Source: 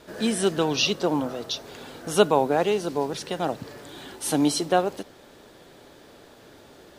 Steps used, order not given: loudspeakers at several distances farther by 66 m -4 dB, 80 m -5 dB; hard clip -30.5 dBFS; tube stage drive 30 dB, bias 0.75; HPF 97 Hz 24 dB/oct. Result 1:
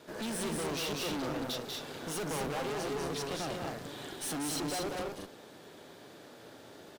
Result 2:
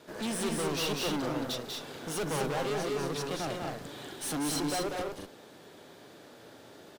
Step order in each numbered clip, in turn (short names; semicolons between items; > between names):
HPF > hard clip > loudspeakers at several distances > tube stage; HPF > tube stage > hard clip > loudspeakers at several distances